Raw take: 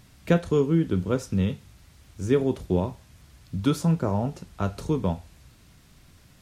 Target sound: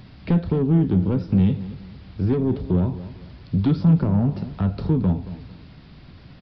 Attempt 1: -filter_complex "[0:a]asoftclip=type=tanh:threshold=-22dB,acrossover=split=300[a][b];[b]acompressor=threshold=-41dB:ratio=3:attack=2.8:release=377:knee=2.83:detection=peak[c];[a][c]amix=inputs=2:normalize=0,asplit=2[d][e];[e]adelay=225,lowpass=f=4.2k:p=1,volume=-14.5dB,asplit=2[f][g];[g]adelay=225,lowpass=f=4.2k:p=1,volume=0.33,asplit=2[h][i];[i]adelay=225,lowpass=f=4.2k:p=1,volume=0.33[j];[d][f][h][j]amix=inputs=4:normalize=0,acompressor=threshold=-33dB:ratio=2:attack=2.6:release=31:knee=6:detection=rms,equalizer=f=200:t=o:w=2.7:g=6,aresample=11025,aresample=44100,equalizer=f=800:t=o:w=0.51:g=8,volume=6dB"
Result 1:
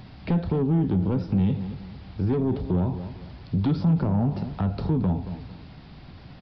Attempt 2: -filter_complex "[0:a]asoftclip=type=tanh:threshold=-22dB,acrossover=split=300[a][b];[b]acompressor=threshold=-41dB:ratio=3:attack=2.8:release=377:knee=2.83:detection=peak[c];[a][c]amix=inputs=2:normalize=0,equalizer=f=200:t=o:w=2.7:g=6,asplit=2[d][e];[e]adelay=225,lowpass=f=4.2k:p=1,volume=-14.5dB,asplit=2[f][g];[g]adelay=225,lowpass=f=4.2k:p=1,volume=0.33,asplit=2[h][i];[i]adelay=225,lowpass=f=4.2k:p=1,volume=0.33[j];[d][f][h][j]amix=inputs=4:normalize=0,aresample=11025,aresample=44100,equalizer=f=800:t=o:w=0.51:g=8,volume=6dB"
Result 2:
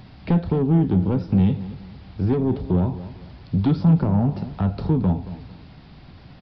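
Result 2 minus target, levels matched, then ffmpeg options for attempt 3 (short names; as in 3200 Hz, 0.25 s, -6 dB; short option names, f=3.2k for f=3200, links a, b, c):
1000 Hz band +4.0 dB
-filter_complex "[0:a]asoftclip=type=tanh:threshold=-22dB,acrossover=split=300[a][b];[b]acompressor=threshold=-41dB:ratio=3:attack=2.8:release=377:knee=2.83:detection=peak[c];[a][c]amix=inputs=2:normalize=0,equalizer=f=200:t=o:w=2.7:g=6,asplit=2[d][e];[e]adelay=225,lowpass=f=4.2k:p=1,volume=-14.5dB,asplit=2[f][g];[g]adelay=225,lowpass=f=4.2k:p=1,volume=0.33,asplit=2[h][i];[i]adelay=225,lowpass=f=4.2k:p=1,volume=0.33[j];[d][f][h][j]amix=inputs=4:normalize=0,aresample=11025,aresample=44100,equalizer=f=800:t=o:w=0.51:g=2,volume=6dB"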